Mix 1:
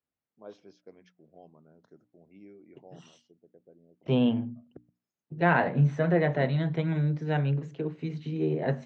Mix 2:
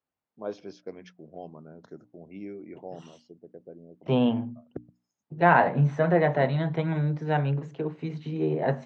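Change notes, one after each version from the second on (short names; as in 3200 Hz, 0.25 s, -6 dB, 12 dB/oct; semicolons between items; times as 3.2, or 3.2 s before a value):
first voice +11.5 dB; second voice: add bell 890 Hz +7.5 dB 1.3 oct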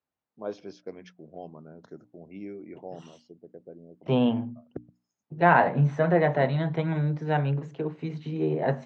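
none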